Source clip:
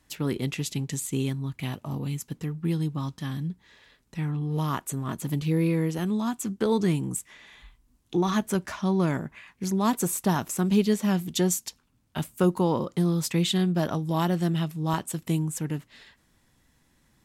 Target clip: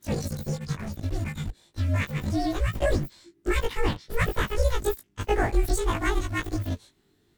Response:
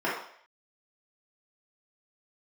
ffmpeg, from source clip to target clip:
-filter_complex "[0:a]afftfilt=real='re':imag='-im':win_size=4096:overlap=0.75,highshelf=f=4400:g=-11,asplit=2[s0][s1];[s1]aeval=exprs='val(0)*gte(abs(val(0)),0.02)':c=same,volume=0.299[s2];[s0][s2]amix=inputs=2:normalize=0,afreqshift=-190,asetrate=103194,aresample=44100,volume=1.5"

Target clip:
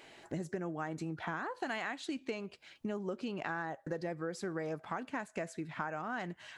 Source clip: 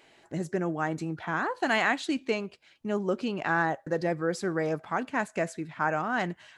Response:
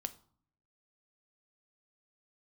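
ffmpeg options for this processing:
-af "acompressor=threshold=0.0112:ratio=6,volume=1.41"

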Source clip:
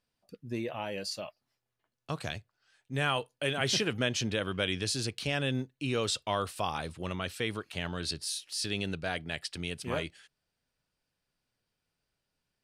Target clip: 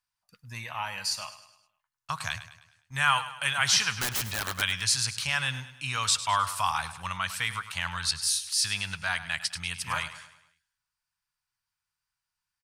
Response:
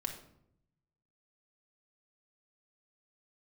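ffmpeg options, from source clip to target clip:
-filter_complex "[0:a]agate=range=0.316:threshold=0.002:ratio=16:detection=peak,firequalizer=gain_entry='entry(110,0);entry(340,-25);entry(940,10);entry(3200,4);entry(6000,10)':delay=0.05:min_phase=1,asettb=1/sr,asplit=3[s0][s1][s2];[s0]atrim=end=3.934[s3];[s1]atrim=start=3.93:end=4.62,asetpts=PTS-STARTPTS,afade=t=in:d=0.004:c=qsin,afade=t=out:st=0.686:d=0.004:c=qsin,aeval=exprs='(mod(14.1*val(0)+1,2)-1)/14.1':c=same[s4];[s2]atrim=start=4.616[s5];[s3][s4]acrossfade=d=0.004:c1=hsin:c2=qsin[s6];[s6][s5]acrossfade=d=0.004:c1=qsin:c2=hsin,aecho=1:1:103|206|309|412|515:0.211|0.0993|0.0467|0.0219|0.0103"

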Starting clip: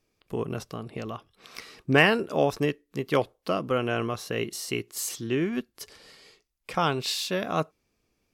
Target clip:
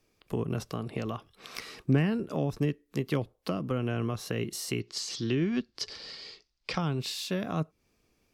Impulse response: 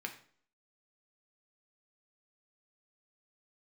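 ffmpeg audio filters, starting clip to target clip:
-filter_complex "[0:a]acrossover=split=260[s0][s1];[s1]acompressor=threshold=0.0158:ratio=8[s2];[s0][s2]amix=inputs=2:normalize=0,asettb=1/sr,asplit=3[s3][s4][s5];[s3]atrim=end=4.804[s6];[s4]atrim=start=4.8:end=6.81,asetpts=PTS-STARTPTS,afade=t=in:d=0.004:c=qsin,afade=t=out:st=2.006:d=0.004:c=qsin,lowpass=f=4800:t=q:w=2.8[s7];[s5]atrim=start=6.806[s8];[s6][s7]acrossfade=d=0.004:c1=hsin:c2=qsin[s9];[s9][s8]acrossfade=d=0.004:c1=qsin:c2=hsin,volume=1.41"

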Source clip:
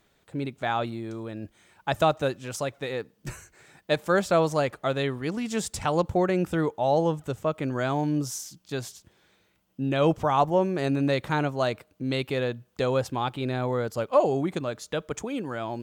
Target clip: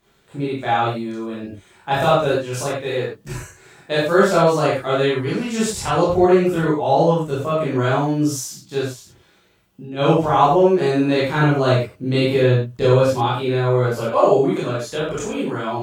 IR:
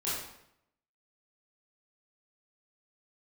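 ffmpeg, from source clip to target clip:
-filter_complex "[0:a]asplit=3[s0][s1][s2];[s0]afade=t=out:st=8.81:d=0.02[s3];[s1]acompressor=threshold=0.0158:ratio=8,afade=t=in:st=8.81:d=0.02,afade=t=out:st=9.96:d=0.02[s4];[s2]afade=t=in:st=9.96:d=0.02[s5];[s3][s4][s5]amix=inputs=3:normalize=0,asettb=1/sr,asplit=3[s6][s7][s8];[s6]atrim=end=11.344[s9];[s7]atrim=start=11.34:end=13,asetpts=PTS-STARTPTS,afade=t=in:d=0.004:c=qsin,afade=t=out:st=1.656:d=0.004:c=qsin,lowshelf=f=260:g=7.5[s10];[s8]atrim=start=12.996[s11];[s9][s10]acrossfade=d=0.004:c1=hsin:c2=qsin[s12];[s12][s11]acrossfade=d=0.004:c1=qsin:c2=hsin[s13];[1:a]atrim=start_sample=2205,afade=t=out:st=0.19:d=0.01,atrim=end_sample=8820[s14];[s13][s14]afir=irnorm=-1:irlink=0,volume=1.33"

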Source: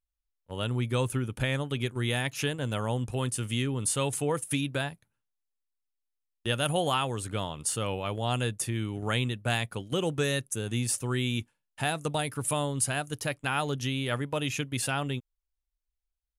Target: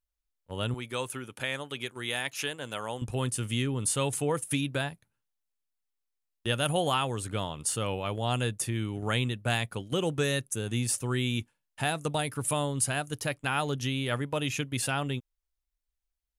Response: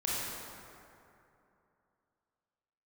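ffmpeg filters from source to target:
-filter_complex "[0:a]asettb=1/sr,asplit=3[s0][s1][s2];[s0]atrim=end=0.744[s3];[s1]atrim=start=0.74:end=3.02,asetpts=PTS-STARTPTS,afade=t=in:d=0.004:c=qsin,afade=t=out:st=2.276:d=0.004:c=qsin,highpass=f=640:p=1[s4];[s2]atrim=start=3.016[s5];[s3][s4]acrossfade=d=0.004:c1=hsin:c2=qsin[s6];[s6][s5]acrossfade=d=0.004:c1=qsin:c2=hsin"

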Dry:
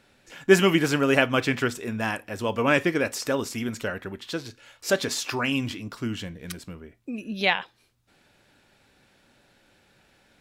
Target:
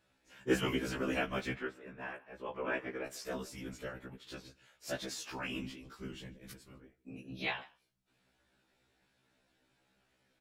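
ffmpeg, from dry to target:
-filter_complex "[0:a]asettb=1/sr,asplit=3[s0][s1][s2];[s0]atrim=end=1.544[s3];[s1]atrim=start=1.54:end=3.06,asetpts=PTS-STARTPTS,afade=t=in:d=0.004:c=qsin,afade=t=out:st=1.516:d=0.004:c=qsin,acrossover=split=260 2700:gain=0.178 1 0.112[s4][s5][s6];[s4][s5][s6]amix=inputs=3:normalize=0[s7];[s2]atrim=start=3.056[s8];[s3][s7]acrossfade=d=0.004:c1=hsin:c2=qsin[s9];[s9][s8]acrossfade=d=0.004:c1=qsin:c2=hsin,asplit=2[s10][s11];[s11]adelay=145.8,volume=0.0794,highshelf=f=4000:g=-3.28[s12];[s10][s12]amix=inputs=2:normalize=0,afftfilt=real='hypot(re,im)*cos(2*PI*random(0))':imag='hypot(re,im)*sin(2*PI*random(1))':win_size=512:overlap=0.75,afftfilt=real='re*1.73*eq(mod(b,3),0)':imag='im*1.73*eq(mod(b,3),0)':win_size=2048:overlap=0.75,volume=0.531"

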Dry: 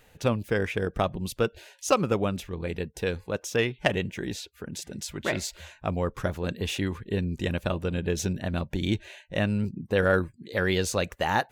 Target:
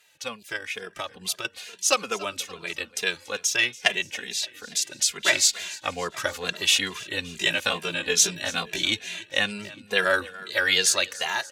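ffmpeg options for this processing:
-filter_complex "[0:a]asettb=1/sr,asplit=3[s0][s1][s2];[s0]atrim=end=0.564[s3];[s1]atrim=start=0.56:end=1.45,asetpts=PTS-STARTPTS,afade=t=in:d=0.004:c=qsin,afade=t=out:st=0.886:d=0.004:c=qsin,acompressor=threshold=0.0355:ratio=6[s4];[s2]atrim=start=1.446[s5];[s3][s4]acrossfade=d=0.004:c1=hsin:c2=qsin[s6];[s6][s5]acrossfade=d=0.004:c1=qsin:c2=hsin,asettb=1/sr,asplit=3[s7][s8][s9];[s7]atrim=end=7.334[s10];[s8]atrim=start=7.33:end=8.82,asetpts=PTS-STARTPTS,afade=t=in:d=0.004:c=qsin,afade=t=out:st=1.486:d=0.004:c=qsin,asplit=2[s11][s12];[s12]adelay=18,volume=0.794[s13];[s11][s13]amix=inputs=2:normalize=0,atrim=end_sample=65709[s14];[s9]atrim=start=8.816[s15];[s10][s14]acrossfade=d=0.004:c1=hsin:c2=qsin[s16];[s16][s15]acrossfade=d=0.004:c1=qsin:c2=hsin,dynaudnorm=f=290:g=5:m=3.76,bandpass=f=5800:t=q:w=0.6:csg=0,aecho=1:1:286|572|858|1144|1430:0.106|0.0625|0.0369|0.0218|0.0128,asplit=2[s17][s18];[s18]adelay=2.5,afreqshift=-2.3[s19];[s17][s19]amix=inputs=2:normalize=1,volume=2.51"

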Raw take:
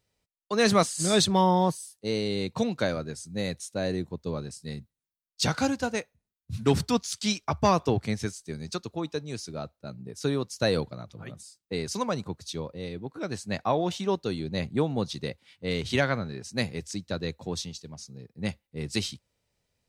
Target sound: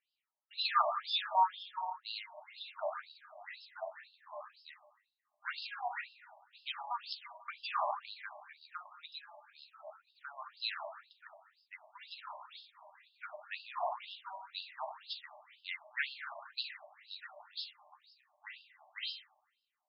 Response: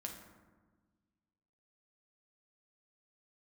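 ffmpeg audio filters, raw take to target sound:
-filter_complex "[0:a]aeval=exprs='0.299*(cos(1*acos(clip(val(0)/0.299,-1,1)))-cos(1*PI/2))+0.015*(cos(3*acos(clip(val(0)/0.299,-1,1)))-cos(3*PI/2))':c=same[s0];[1:a]atrim=start_sample=2205,asetrate=37926,aresample=44100[s1];[s0][s1]afir=irnorm=-1:irlink=0,afftfilt=real='re*between(b*sr/1024,800*pow(3800/800,0.5+0.5*sin(2*PI*2*pts/sr))/1.41,800*pow(3800/800,0.5+0.5*sin(2*PI*2*pts/sr))*1.41)':imag='im*between(b*sr/1024,800*pow(3800/800,0.5+0.5*sin(2*PI*2*pts/sr))/1.41,800*pow(3800/800,0.5+0.5*sin(2*PI*2*pts/sr))*1.41)':win_size=1024:overlap=0.75,volume=1.12"

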